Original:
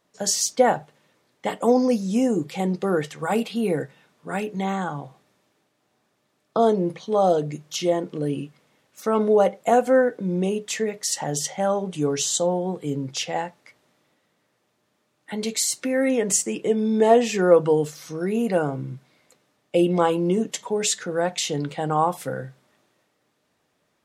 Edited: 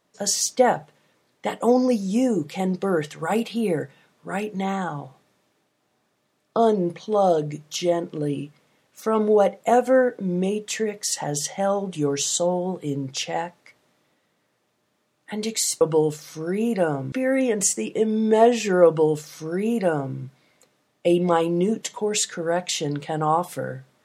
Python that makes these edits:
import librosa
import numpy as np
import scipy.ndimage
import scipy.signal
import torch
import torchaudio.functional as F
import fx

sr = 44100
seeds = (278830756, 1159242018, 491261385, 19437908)

y = fx.edit(x, sr, fx.duplicate(start_s=17.55, length_s=1.31, to_s=15.81), tone=tone)